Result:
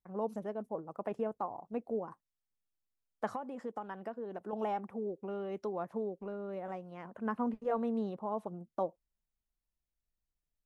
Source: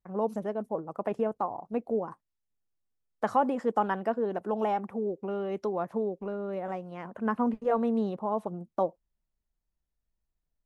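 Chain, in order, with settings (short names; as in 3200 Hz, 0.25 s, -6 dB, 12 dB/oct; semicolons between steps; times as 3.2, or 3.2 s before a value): 3.27–4.53 compressor 6:1, threshold -31 dBFS, peak gain reduction 12 dB; gain -6.5 dB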